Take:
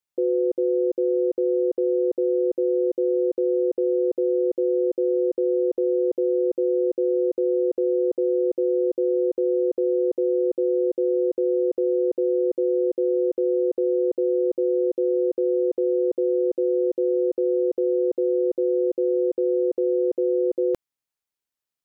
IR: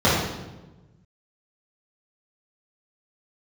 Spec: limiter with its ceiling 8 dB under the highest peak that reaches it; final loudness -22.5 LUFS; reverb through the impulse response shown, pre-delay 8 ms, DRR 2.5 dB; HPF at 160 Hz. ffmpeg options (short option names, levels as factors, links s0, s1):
-filter_complex "[0:a]highpass=160,alimiter=limit=0.0668:level=0:latency=1,asplit=2[s0][s1];[1:a]atrim=start_sample=2205,adelay=8[s2];[s1][s2]afir=irnorm=-1:irlink=0,volume=0.0596[s3];[s0][s3]amix=inputs=2:normalize=0,volume=1.58"